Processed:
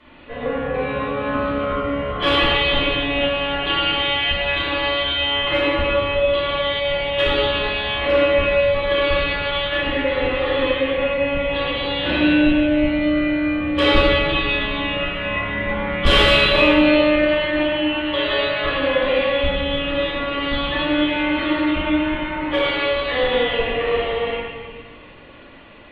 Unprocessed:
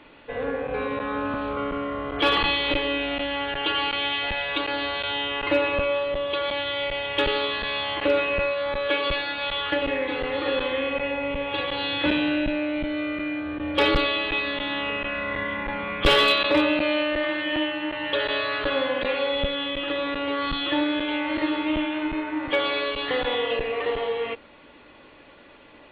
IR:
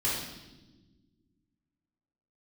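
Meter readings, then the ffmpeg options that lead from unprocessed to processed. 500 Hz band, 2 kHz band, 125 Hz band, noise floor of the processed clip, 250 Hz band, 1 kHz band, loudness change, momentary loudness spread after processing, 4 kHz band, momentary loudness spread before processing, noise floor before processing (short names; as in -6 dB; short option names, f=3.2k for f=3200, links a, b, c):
+6.5 dB, +5.5 dB, +10.5 dB, -41 dBFS, +7.0 dB, +4.0 dB, +6.0 dB, 7 LU, +5.5 dB, 7 LU, -50 dBFS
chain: -filter_complex "[1:a]atrim=start_sample=2205,asetrate=26460,aresample=44100[a];[0:a][a]afir=irnorm=-1:irlink=0,volume=-7dB"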